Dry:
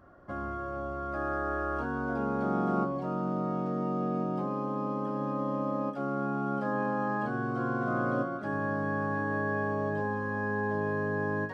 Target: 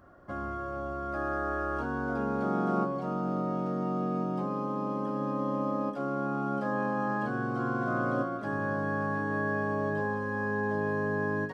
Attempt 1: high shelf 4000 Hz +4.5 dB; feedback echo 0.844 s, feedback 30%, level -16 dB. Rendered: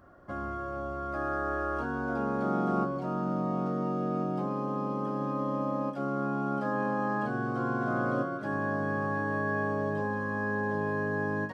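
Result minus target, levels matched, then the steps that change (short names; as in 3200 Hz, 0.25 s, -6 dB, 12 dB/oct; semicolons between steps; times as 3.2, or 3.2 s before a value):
echo 0.271 s late
change: feedback echo 0.573 s, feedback 30%, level -16 dB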